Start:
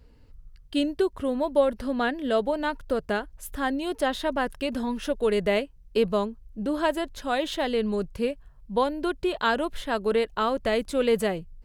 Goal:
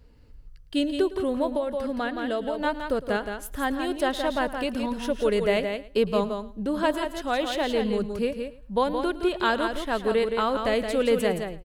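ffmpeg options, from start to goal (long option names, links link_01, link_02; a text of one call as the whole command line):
ffmpeg -i in.wav -filter_complex "[0:a]asplit=2[link_01][link_02];[link_02]aecho=0:1:170:0.473[link_03];[link_01][link_03]amix=inputs=2:normalize=0,asettb=1/sr,asplit=3[link_04][link_05][link_06];[link_04]atrim=end=1.554[link_07];[link_05]atrim=start=1.55:end=2.62,asetpts=PTS-STARTPTS,afade=type=in:duration=0.004:curve=qsin,afade=type=out:start_time=1.066:duration=0.004:curve=qsin,acompressor=threshold=-25dB:ratio=4[link_08];[link_06]atrim=start=2.616[link_09];[link_07][link_08]acrossfade=duration=0.004:curve1=hsin:curve2=qsin[link_10];[link_10][link_09]acrossfade=duration=0.004:curve1=qsin:curve2=hsin,asplit=2[link_11][link_12];[link_12]aecho=0:1:109|218:0.133|0.024[link_13];[link_11][link_13]amix=inputs=2:normalize=0" out.wav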